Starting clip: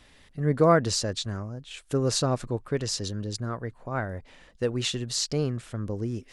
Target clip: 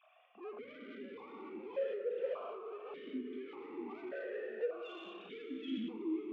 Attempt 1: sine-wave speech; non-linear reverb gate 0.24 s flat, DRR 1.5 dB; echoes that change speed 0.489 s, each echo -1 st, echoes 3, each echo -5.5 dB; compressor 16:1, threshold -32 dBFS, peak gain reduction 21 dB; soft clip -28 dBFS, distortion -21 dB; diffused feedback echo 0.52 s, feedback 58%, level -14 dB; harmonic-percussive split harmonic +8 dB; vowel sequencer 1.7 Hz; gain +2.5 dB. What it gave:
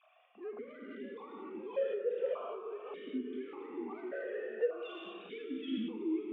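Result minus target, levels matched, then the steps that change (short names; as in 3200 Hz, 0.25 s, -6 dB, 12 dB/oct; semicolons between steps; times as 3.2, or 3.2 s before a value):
soft clip: distortion -10 dB
change: soft clip -36 dBFS, distortion -11 dB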